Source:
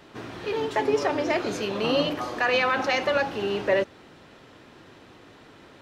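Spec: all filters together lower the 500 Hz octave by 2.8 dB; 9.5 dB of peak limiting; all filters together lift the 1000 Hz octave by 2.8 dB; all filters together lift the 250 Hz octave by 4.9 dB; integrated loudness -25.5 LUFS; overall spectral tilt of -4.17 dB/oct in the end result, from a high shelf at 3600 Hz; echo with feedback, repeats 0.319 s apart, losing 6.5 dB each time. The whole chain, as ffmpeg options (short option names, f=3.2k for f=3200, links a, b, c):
-af "equalizer=f=250:t=o:g=8,equalizer=f=500:t=o:g=-7,equalizer=f=1k:t=o:g=5,highshelf=f=3.6k:g=5.5,alimiter=limit=-18.5dB:level=0:latency=1,aecho=1:1:319|638|957|1276|1595|1914:0.473|0.222|0.105|0.0491|0.0231|0.0109,volume=1.5dB"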